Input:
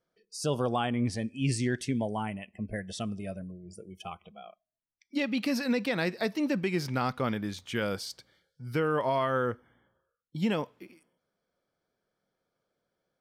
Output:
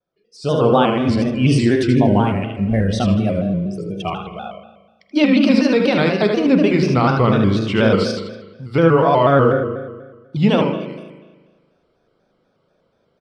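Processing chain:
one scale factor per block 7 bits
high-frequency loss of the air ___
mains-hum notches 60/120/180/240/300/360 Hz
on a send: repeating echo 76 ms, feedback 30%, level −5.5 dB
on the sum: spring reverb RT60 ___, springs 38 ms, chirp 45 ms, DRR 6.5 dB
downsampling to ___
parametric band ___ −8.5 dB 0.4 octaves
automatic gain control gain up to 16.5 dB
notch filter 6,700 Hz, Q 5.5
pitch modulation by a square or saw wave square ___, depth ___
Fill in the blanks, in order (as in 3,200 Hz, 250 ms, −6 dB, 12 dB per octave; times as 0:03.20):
120 metres, 1.3 s, 32,000 Hz, 1,800 Hz, 4.1 Hz, 100 cents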